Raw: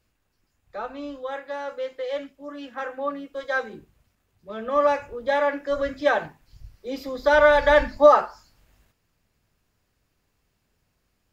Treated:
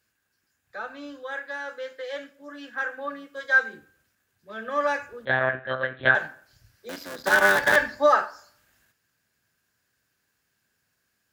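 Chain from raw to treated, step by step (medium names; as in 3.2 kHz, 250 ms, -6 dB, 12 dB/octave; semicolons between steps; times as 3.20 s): 6.89–7.76 s: cycle switcher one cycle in 3, muted; treble shelf 3.1 kHz +10.5 dB; 5.25–6.15 s: monotone LPC vocoder at 8 kHz 130 Hz; high-pass 100 Hz 12 dB/octave; peaking EQ 1.6 kHz +13.5 dB 0.34 oct; plate-style reverb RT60 0.59 s, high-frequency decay 0.75×, DRR 14 dB; trim -6.5 dB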